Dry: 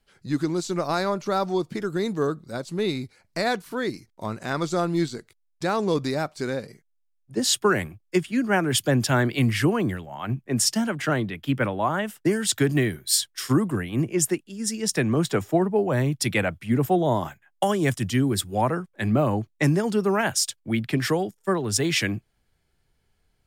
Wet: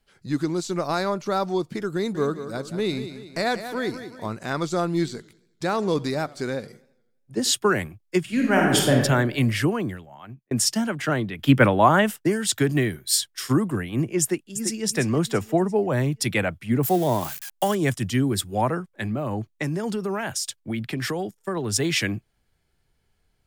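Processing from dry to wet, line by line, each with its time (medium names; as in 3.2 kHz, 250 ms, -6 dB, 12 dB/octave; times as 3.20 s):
1.96–4.32 s: feedback delay 185 ms, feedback 45%, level -11 dB
4.87–7.51 s: modulated delay 84 ms, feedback 52%, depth 134 cents, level -21.5 dB
8.21–8.95 s: reverb throw, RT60 1.1 s, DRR -1 dB
9.56–10.51 s: fade out
11.39–12.16 s: gain +8 dB
14.21–14.84 s: echo throw 340 ms, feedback 40%, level -8.5 dB
16.83–17.75 s: zero-crossing glitches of -24.5 dBFS
18.87–21.57 s: compression, threshold -23 dBFS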